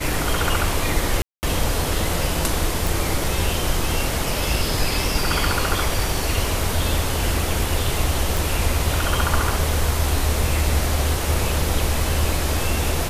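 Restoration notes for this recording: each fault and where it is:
0:01.22–0:01.43: drop-out 209 ms
0:02.87: click
0:08.37: click

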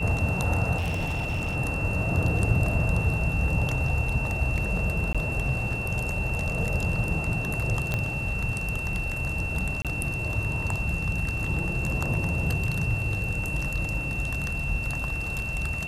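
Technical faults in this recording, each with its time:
whistle 2,700 Hz −31 dBFS
0:00.77–0:01.56: clipping −24 dBFS
0:05.13–0:05.15: drop-out 16 ms
0:07.94: click −13 dBFS
0:09.82–0:09.85: drop-out 27 ms

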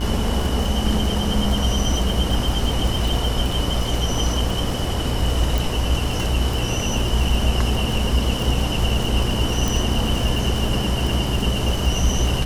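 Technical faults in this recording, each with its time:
mains buzz 60 Hz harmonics 30 −25 dBFS
surface crackle 45 per second −23 dBFS
0:05.58: click
0:09.68: click

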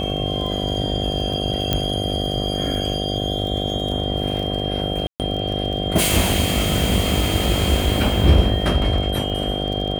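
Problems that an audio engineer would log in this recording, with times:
mains buzz 50 Hz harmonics 15 −25 dBFS
surface crackle 27 per second −27 dBFS
whistle 3,200 Hz −27 dBFS
0:01.73: click −4 dBFS
0:05.07–0:05.20: drop-out 128 ms

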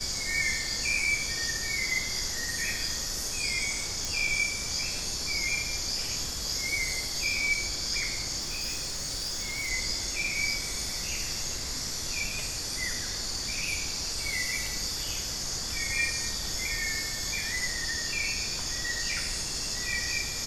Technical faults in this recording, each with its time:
0:04.05: click
0:08.39–0:09.70: clipping −29 dBFS

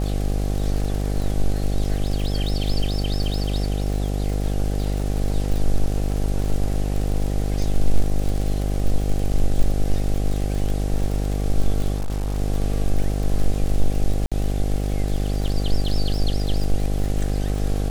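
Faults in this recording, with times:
mains buzz 50 Hz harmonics 16 −23 dBFS
surface crackle 76 per second −26 dBFS
0:11.96–0:12.38: clipping −20 dBFS
0:14.26–0:14.32: drop-out 56 ms

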